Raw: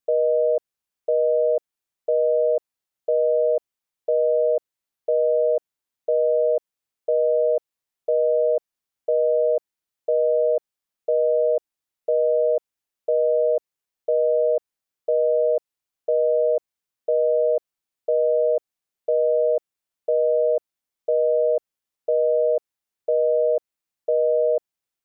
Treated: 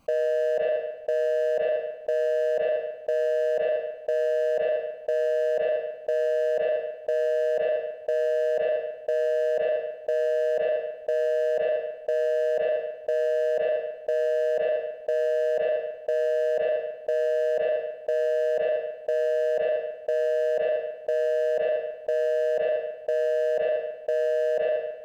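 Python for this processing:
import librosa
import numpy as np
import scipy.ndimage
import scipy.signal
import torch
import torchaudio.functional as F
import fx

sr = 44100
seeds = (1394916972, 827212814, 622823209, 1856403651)

y = fx.wiener(x, sr, points=25)
y = fx.peak_eq(y, sr, hz=400.0, db=-14.0, octaves=0.48)
y = fx.rev_spring(y, sr, rt60_s=1.0, pass_ms=(36, 47), chirp_ms=45, drr_db=14.5)
y = fx.dereverb_blind(y, sr, rt60_s=0.84)
y = fx.env_flatten(y, sr, amount_pct=100)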